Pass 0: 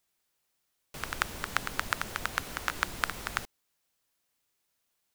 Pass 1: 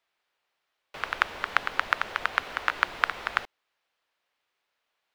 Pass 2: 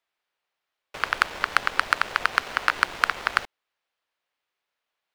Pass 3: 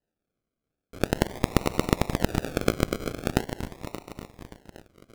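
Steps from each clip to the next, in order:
three-way crossover with the lows and the highs turned down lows −15 dB, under 420 Hz, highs −22 dB, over 3,900 Hz; level +6.5 dB
leveller curve on the samples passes 2
feedback delay that plays each chunk backwards 288 ms, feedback 67%, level −9.5 dB; sample-and-hold swept by an LFO 38×, swing 60% 0.43 Hz; wow of a warped record 45 rpm, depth 160 cents; level −1.5 dB

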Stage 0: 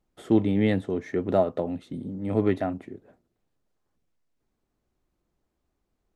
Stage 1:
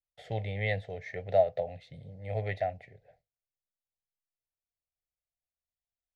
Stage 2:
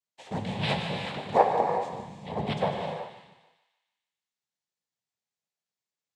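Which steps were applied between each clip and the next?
noise gate with hold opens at −51 dBFS; drawn EQ curve 140 Hz 0 dB, 230 Hz −23 dB, 340 Hz −26 dB, 490 Hz 0 dB, 740 Hz +4 dB, 1,100 Hz −23 dB, 2,000 Hz +7 dB, 3,000 Hz −1 dB, 4,500 Hz +3 dB, 8,700 Hz −12 dB; level −3.5 dB
cochlear-implant simulation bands 6; feedback echo with a high-pass in the loop 149 ms, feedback 56%, high-pass 890 Hz, level −10 dB; reverb whose tail is shaped and stops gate 420 ms flat, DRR 2.5 dB; level +2.5 dB

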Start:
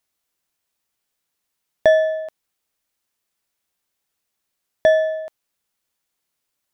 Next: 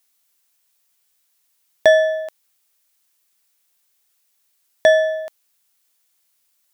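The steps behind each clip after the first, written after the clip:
spectral tilt +2.5 dB per octave
level +3 dB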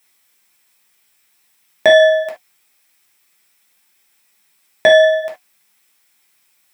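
convolution reverb, pre-delay 3 ms, DRR −2.5 dB
flanger 0.5 Hz, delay 2.5 ms, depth 5.9 ms, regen −65%
brickwall limiter −9.5 dBFS, peak gain reduction 7.5 dB
level +8.5 dB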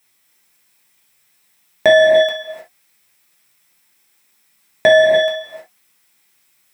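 low-shelf EQ 170 Hz +8.5 dB
reverb whose tail is shaped and stops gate 330 ms rising, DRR 2.5 dB
level −1.5 dB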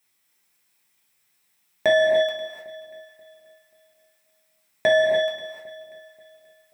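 delay that swaps between a low-pass and a high-pass 267 ms, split 1,000 Hz, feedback 55%, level −14 dB
level −8 dB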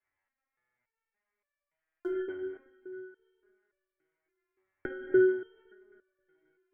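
single-sideband voice off tune −260 Hz 160–2,400 Hz
buffer that repeats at 0:00.48/0:01.77, samples 2,048, times 5
step-sequenced resonator 3.5 Hz 95–580 Hz
level +3 dB

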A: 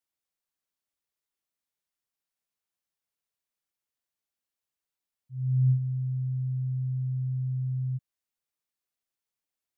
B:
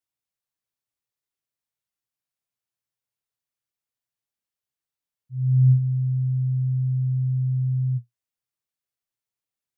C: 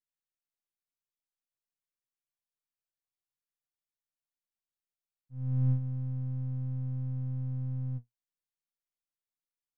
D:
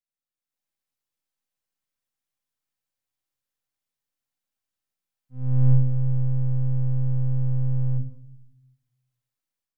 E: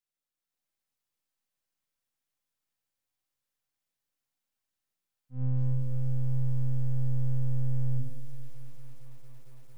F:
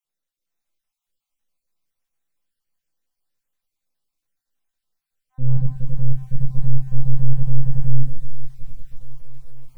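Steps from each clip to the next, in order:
parametric band 120 Hz +11.5 dB 0.4 octaves; level −2 dB
gain on one half-wave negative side −7 dB; level −8.5 dB
automatic gain control gain up to 10 dB; convolution reverb RT60 0.75 s, pre-delay 4 ms, DRR 2.5 dB; level −6 dB
downward compressor 10 to 1, threshold −23 dBFS, peak gain reduction 12.5 dB; feedback echo at a low word length 227 ms, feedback 80%, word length 9 bits, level −13 dB
time-frequency cells dropped at random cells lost 37%; rectangular room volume 170 cubic metres, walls furnished, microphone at 0.81 metres; level +3.5 dB

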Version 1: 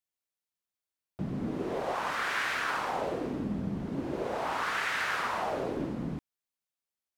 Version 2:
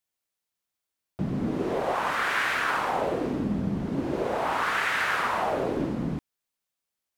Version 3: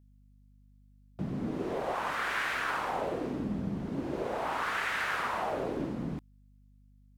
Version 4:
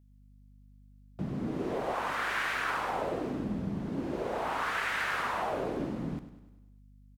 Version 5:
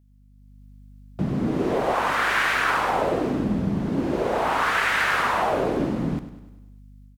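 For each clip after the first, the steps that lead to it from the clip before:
dynamic equaliser 5,300 Hz, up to −4 dB, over −51 dBFS, Q 1.1; level +5.5 dB
mains hum 50 Hz, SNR 25 dB; level −6 dB
repeating echo 100 ms, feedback 54%, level −13 dB
automatic gain control gain up to 7 dB; level +3 dB

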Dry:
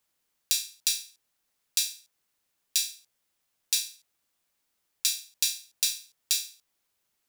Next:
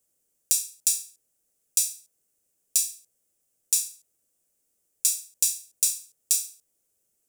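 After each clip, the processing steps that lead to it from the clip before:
octave-band graphic EQ 500/1,000/2,000/4,000/8,000 Hz +6/−12/−7/−12/+8 dB
level +2.5 dB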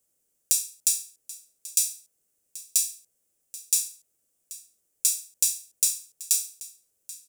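single-tap delay 783 ms −18 dB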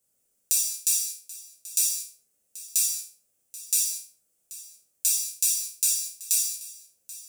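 reverb whose tail is shaped and stops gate 250 ms falling, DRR −4 dB
level −3.5 dB

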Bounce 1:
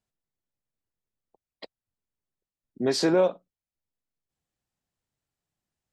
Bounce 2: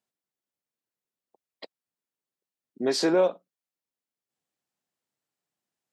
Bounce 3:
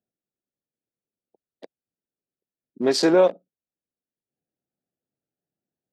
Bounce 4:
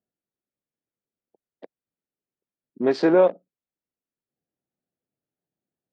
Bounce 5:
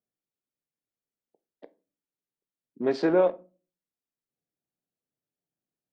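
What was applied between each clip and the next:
high-pass filter 220 Hz 12 dB per octave
adaptive Wiener filter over 41 samples; level +5.5 dB
low-pass filter 2,300 Hz 12 dB per octave
rectangular room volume 170 cubic metres, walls furnished, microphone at 0.36 metres; level −5 dB

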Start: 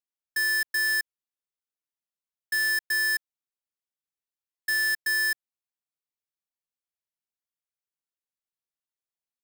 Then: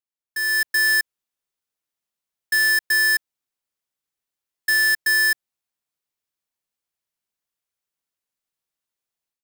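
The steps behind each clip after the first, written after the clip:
automatic gain control gain up to 10.5 dB
level −3.5 dB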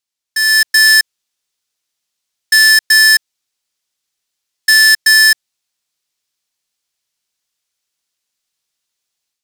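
parametric band 5,100 Hz +11 dB 2.4 octaves
level +4.5 dB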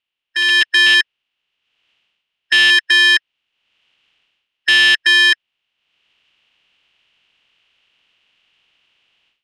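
ceiling on every frequency bin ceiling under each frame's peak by 14 dB
automatic gain control gain up to 13 dB
low-pass with resonance 2,900 Hz, resonance Q 5.9
level −1 dB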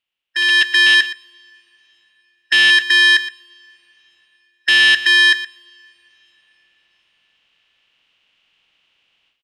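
single-tap delay 119 ms −14.5 dB
convolution reverb, pre-delay 3 ms, DRR 14 dB
level −1 dB

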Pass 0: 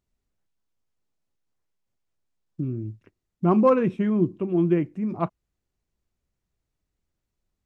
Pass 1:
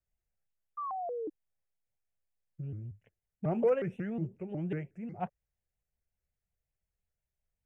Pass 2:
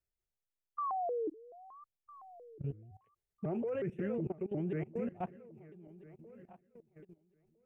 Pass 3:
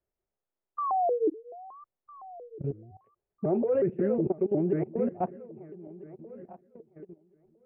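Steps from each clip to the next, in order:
phaser with its sweep stopped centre 1,100 Hz, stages 6; sound drawn into the spectrogram fall, 0:00.77–0:01.30, 350–1,300 Hz −30 dBFS; pitch modulation by a square or saw wave saw up 5.5 Hz, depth 250 cents; level −6.5 dB
feedback delay that plays each chunk backwards 653 ms, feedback 49%, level −12.5 dB; parametric band 380 Hz +8.5 dB 0.53 octaves; output level in coarse steps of 19 dB; level +3 dB
low-pass filter 1,800 Hz 12 dB per octave; parametric band 450 Hz +12.5 dB 2.6 octaves; notch filter 470 Hz, Q 15

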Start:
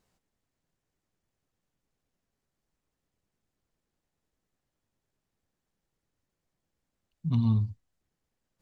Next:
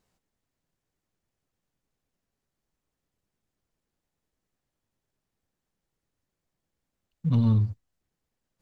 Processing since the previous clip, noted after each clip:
leveller curve on the samples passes 1
level +1.5 dB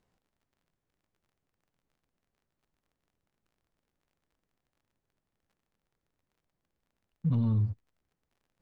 brickwall limiter −21.5 dBFS, peak gain reduction 6.5 dB
surface crackle 40 per second −55 dBFS
high-shelf EQ 3,400 Hz −12 dB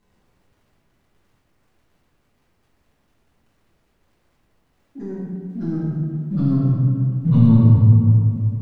convolution reverb RT60 2.9 s, pre-delay 5 ms, DRR −11 dB
delay with pitch and tempo change per echo 215 ms, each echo +3 semitones, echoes 3, each echo −6 dB
level +3.5 dB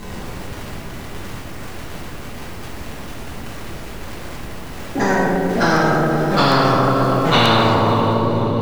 fade-out on the ending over 1.32 s
feedback delay with all-pass diffusion 552 ms, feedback 48%, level −14 dB
every bin compressed towards the loudest bin 10 to 1
level +1 dB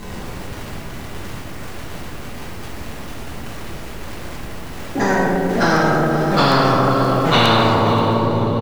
single-tap delay 528 ms −15.5 dB

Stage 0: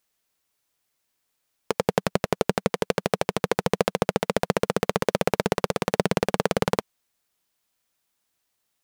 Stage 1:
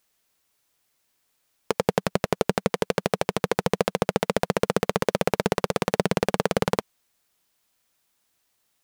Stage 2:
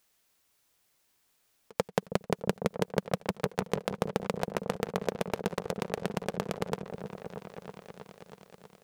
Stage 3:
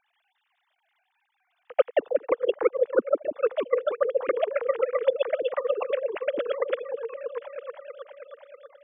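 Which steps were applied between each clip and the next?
brickwall limiter −8.5 dBFS, peak gain reduction 6 dB; level +4.5 dB
volume swells 160 ms; on a send: echo whose low-pass opens from repeat to repeat 320 ms, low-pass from 400 Hz, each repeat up 1 octave, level −6 dB
three sine waves on the formant tracks; level +7.5 dB

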